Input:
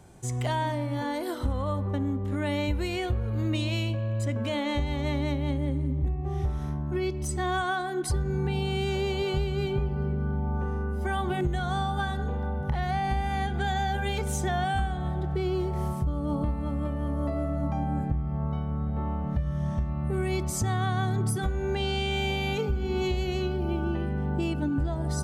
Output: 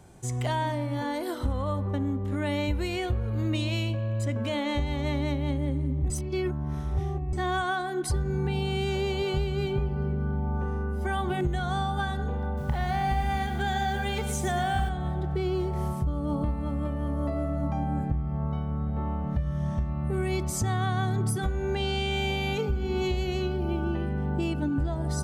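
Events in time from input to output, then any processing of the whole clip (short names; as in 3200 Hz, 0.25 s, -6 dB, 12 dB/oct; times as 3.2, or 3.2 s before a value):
6.1–7.33 reverse
12.46–14.89 lo-fi delay 0.114 s, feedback 35%, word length 8-bit, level -8 dB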